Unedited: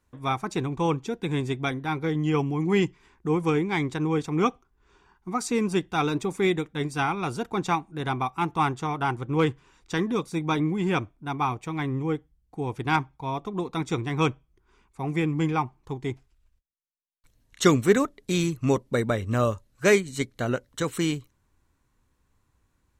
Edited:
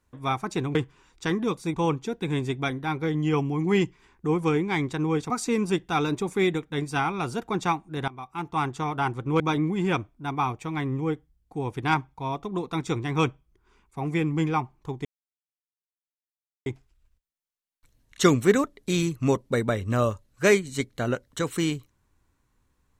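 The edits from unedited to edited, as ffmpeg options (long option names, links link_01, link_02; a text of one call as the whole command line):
ffmpeg -i in.wav -filter_complex "[0:a]asplit=7[link_01][link_02][link_03][link_04][link_05][link_06][link_07];[link_01]atrim=end=0.752[link_08];[link_02]atrim=start=9.428:end=10.422[link_09];[link_03]atrim=start=0.748:end=4.312[link_10];[link_04]atrim=start=5.328:end=8.11,asetpts=PTS-STARTPTS,afade=type=out:start_time=2.778:duration=0.004:curve=hsin:silence=0.112202[link_11];[link_05]atrim=start=8.11:end=9.432,asetpts=PTS-STARTPTS,afade=type=in:duration=0.73:silence=0.112202[link_12];[link_06]atrim=start=10.418:end=16.07,asetpts=PTS-STARTPTS,afade=type=out:start_time=5.648:duration=0.004:curve=hsin,apad=pad_dur=1.61[link_13];[link_07]atrim=start=16.07,asetpts=PTS-STARTPTS,afade=type=in:duration=0.004:curve=hsin[link_14];[link_08][link_09]acrossfade=duration=0.004:curve1=hsin:curve2=hsin[link_15];[link_15][link_10]acrossfade=duration=0.004:curve1=hsin:curve2=hsin[link_16];[link_11][link_12]concat=n=2:v=0:a=1[link_17];[link_16][link_17]acrossfade=duration=0.004:curve1=hsin:curve2=hsin[link_18];[link_13][link_14]concat=n=2:v=0:a=1[link_19];[link_18][link_19]acrossfade=duration=0.004:curve1=hsin:curve2=hsin" out.wav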